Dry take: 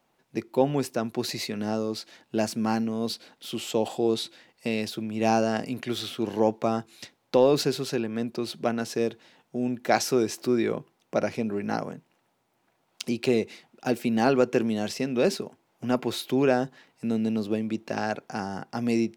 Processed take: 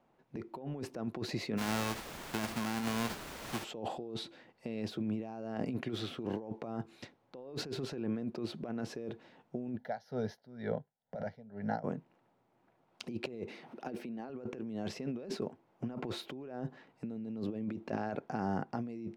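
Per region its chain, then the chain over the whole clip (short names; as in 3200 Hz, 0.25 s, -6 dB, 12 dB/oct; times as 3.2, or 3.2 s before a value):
1.57–3.63 spectral whitening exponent 0.1 + requantised 6-bit, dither triangular
9.77–11.84 fixed phaser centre 1700 Hz, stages 8 + dB-linear tremolo 2.1 Hz, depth 21 dB
13.48–14.3 HPF 170 Hz + notch 7300 Hz, Q 6.7 + upward compressor, threshold -38 dBFS
whole clip: LPF 1000 Hz 6 dB/oct; negative-ratio compressor -34 dBFS, ratio -1; gain -4.5 dB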